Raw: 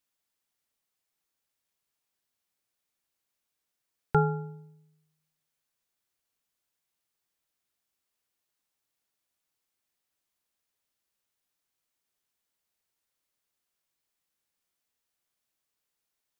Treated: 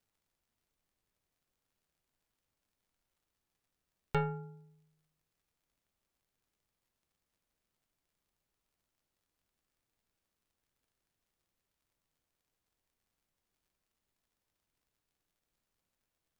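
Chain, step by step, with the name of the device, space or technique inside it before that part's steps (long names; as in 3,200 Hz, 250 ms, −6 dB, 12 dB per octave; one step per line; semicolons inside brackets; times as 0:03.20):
record under a worn stylus (stylus tracing distortion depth 0.21 ms; surface crackle; pink noise bed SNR 38 dB)
level −8.5 dB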